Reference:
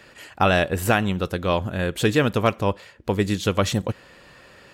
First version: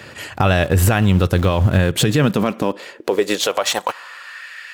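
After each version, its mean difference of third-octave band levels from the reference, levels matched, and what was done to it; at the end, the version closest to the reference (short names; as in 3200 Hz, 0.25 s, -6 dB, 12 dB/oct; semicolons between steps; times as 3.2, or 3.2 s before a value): 6.0 dB: high-pass sweep 90 Hz -> 1800 Hz, 1.75–4.48; in parallel at -9 dB: sample gate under -27 dBFS; on the sum: compressor 4:1, threshold -19 dBFS, peak gain reduction 9.5 dB; maximiser +15.5 dB; gain -5 dB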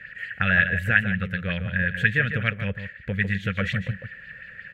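9.5 dB: EQ curve 190 Hz 0 dB, 330 Hz -25 dB, 510 Hz -11 dB, 1000 Hz -27 dB, 1700 Hz +11 dB, 5000 Hz -21 dB; in parallel at -2 dB: compressor, threshold -30 dBFS, peak gain reduction 15 dB; on the sum: outdoor echo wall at 26 m, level -9 dB; LFO bell 5.5 Hz 320–4800 Hz +9 dB; gain -4 dB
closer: first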